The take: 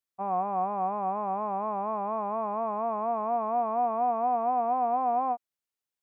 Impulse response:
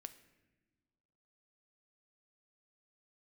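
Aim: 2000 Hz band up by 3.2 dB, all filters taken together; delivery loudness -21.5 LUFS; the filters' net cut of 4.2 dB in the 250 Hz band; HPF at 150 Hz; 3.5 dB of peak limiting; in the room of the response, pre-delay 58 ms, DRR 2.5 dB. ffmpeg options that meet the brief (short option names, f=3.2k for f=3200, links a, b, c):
-filter_complex "[0:a]highpass=150,equalizer=f=250:t=o:g=-4,equalizer=f=2k:t=o:g=4.5,alimiter=limit=-22dB:level=0:latency=1,asplit=2[a][b];[1:a]atrim=start_sample=2205,adelay=58[c];[b][c]afir=irnorm=-1:irlink=0,volume=3dB[d];[a][d]amix=inputs=2:normalize=0,volume=6.5dB"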